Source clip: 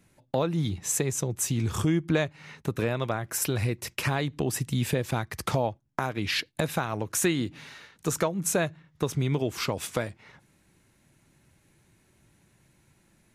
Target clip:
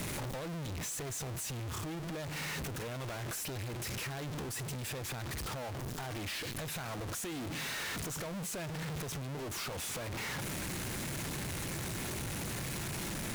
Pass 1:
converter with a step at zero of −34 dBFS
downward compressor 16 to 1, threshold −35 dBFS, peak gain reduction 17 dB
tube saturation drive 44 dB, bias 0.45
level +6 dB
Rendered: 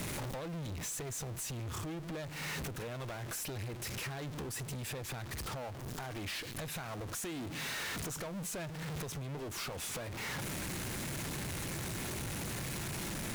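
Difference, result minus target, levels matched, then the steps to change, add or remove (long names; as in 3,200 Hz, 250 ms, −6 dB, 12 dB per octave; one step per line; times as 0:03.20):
converter with a step at zero: distortion −7 dB
change: converter with a step at zero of −24.5 dBFS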